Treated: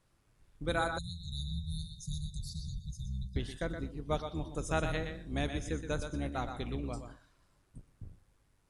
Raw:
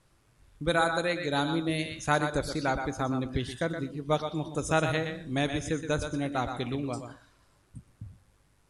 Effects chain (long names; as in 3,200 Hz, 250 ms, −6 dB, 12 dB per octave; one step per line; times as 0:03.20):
sub-octave generator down 2 octaves, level +1 dB
time-frequency box erased 0:00.98–0:03.36, 210–3,500 Hz
level −7 dB